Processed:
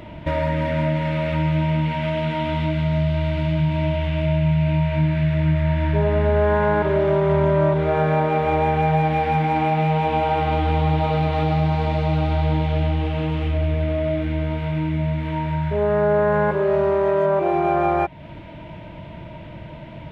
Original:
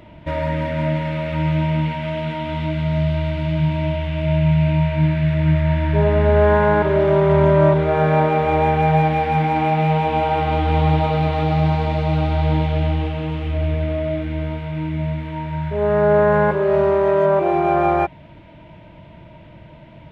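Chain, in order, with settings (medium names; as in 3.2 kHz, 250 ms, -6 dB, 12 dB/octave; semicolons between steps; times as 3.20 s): compression 2:1, threshold -28 dBFS, peak gain reduction 10 dB; trim +5.5 dB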